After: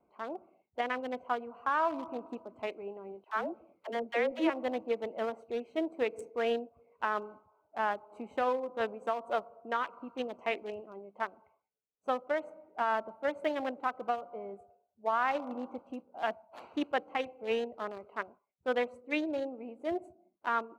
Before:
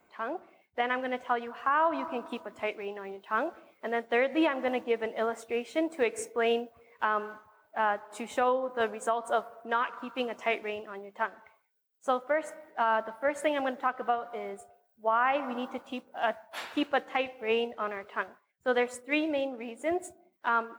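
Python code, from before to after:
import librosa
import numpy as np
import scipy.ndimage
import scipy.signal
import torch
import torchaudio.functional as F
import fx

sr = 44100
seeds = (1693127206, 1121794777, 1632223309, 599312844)

y = fx.wiener(x, sr, points=25)
y = fx.dispersion(y, sr, late='lows', ms=73.0, hz=410.0, at=(3.24, 4.5))
y = y * librosa.db_to_amplitude(-3.0)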